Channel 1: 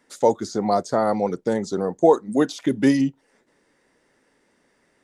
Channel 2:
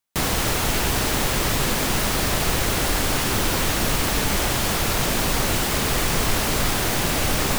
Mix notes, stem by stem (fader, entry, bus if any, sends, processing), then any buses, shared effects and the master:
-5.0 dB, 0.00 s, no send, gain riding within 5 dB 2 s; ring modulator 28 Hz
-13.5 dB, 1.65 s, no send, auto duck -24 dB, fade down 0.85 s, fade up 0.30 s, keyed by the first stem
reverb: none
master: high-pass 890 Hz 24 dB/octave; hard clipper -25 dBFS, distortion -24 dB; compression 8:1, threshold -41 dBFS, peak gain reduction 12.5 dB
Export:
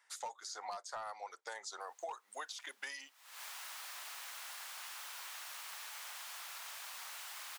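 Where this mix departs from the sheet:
stem 1: missing ring modulator 28 Hz; stem 2 -13.5 dB -> -22.5 dB

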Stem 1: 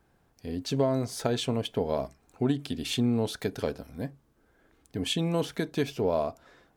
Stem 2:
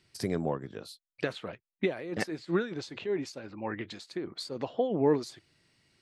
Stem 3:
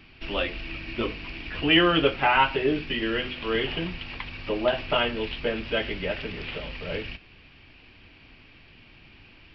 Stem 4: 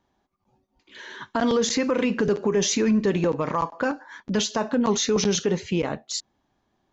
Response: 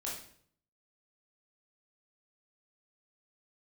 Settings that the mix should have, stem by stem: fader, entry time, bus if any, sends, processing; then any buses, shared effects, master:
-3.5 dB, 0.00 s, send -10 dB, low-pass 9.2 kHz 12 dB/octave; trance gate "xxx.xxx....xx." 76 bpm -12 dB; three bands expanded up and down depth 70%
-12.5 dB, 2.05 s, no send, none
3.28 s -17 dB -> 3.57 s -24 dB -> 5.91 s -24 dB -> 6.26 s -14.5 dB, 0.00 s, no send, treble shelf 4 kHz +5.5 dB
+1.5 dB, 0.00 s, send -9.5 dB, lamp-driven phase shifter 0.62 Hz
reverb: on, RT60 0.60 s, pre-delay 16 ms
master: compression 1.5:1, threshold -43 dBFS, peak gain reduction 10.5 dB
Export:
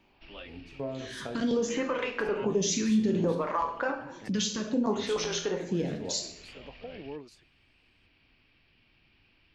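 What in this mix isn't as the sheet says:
stem 1 -3.5 dB -> -12.0 dB; reverb return +9.0 dB

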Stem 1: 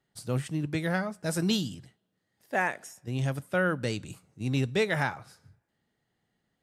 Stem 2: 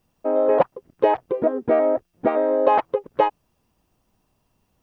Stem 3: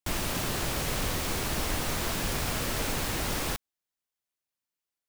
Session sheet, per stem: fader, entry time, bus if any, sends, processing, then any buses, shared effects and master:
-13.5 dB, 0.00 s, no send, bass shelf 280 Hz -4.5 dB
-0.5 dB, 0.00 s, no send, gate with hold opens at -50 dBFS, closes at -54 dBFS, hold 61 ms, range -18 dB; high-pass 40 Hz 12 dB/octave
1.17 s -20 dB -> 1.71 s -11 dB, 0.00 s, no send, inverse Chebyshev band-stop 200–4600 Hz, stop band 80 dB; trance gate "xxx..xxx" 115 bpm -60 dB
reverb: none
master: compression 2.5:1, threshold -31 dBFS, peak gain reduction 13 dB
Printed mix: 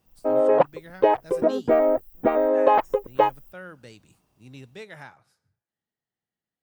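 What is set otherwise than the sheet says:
stem 2: missing gate with hold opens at -50 dBFS, closes at -54 dBFS, hold 61 ms, range -18 dB; master: missing compression 2.5:1, threshold -31 dBFS, peak gain reduction 13 dB

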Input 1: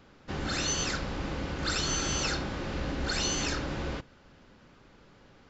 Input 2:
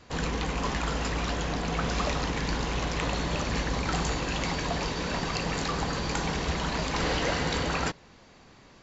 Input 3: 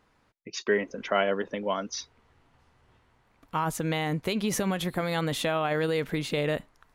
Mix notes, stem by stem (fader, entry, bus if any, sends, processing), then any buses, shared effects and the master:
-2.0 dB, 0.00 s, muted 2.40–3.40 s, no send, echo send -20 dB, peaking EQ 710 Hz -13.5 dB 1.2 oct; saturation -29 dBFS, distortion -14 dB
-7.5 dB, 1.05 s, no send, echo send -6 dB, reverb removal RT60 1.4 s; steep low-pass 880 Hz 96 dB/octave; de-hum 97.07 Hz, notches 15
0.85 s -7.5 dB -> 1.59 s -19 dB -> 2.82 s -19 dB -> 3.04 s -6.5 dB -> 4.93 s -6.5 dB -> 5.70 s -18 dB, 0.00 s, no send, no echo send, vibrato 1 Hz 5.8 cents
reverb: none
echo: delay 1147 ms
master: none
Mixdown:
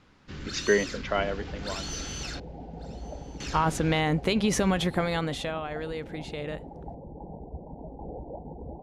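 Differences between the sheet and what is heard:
stem 3 -7.5 dB -> +2.5 dB; master: extra low-pass 7.9 kHz 12 dB/octave

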